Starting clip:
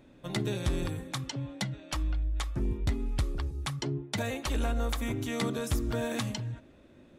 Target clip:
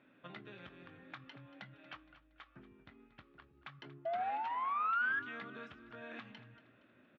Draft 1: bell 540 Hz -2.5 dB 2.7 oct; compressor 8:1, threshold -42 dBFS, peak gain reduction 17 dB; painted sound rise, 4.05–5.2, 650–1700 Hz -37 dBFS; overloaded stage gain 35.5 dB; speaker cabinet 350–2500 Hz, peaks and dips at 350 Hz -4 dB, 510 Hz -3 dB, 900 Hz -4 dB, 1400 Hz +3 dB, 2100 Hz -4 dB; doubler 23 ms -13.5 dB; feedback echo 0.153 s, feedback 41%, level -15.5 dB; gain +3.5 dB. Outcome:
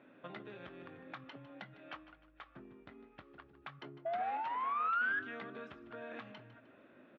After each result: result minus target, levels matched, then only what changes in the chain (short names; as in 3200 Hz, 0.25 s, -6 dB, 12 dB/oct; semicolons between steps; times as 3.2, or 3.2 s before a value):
echo 80 ms early; 500 Hz band +3.0 dB
change: feedback echo 0.233 s, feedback 41%, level -15.5 dB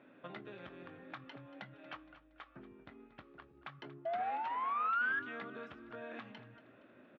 500 Hz band +3.0 dB
change: bell 540 Hz -11 dB 2.7 oct